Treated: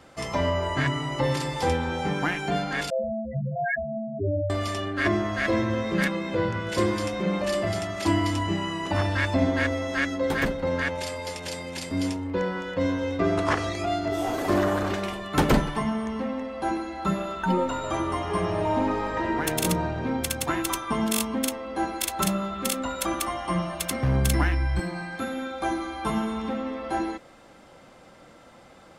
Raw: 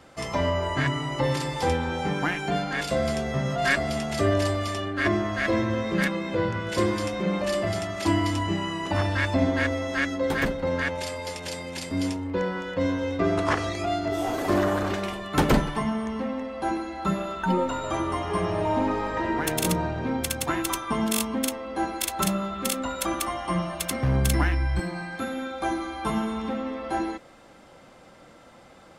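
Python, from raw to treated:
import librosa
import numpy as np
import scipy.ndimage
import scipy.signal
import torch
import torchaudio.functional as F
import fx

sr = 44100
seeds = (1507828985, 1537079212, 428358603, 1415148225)

y = fx.spec_topn(x, sr, count=4, at=(2.9, 4.5))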